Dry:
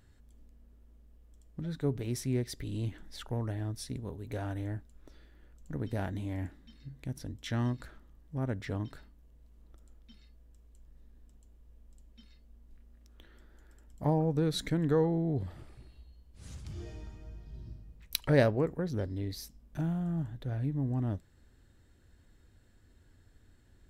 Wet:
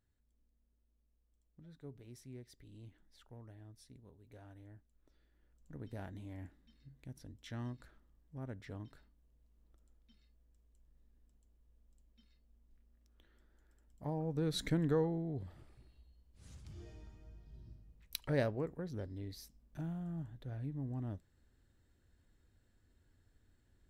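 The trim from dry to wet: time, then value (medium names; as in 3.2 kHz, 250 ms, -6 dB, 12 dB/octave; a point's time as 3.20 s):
4.71 s -19.5 dB
5.83 s -11.5 dB
14.10 s -11.5 dB
14.69 s -2 dB
15.28 s -9 dB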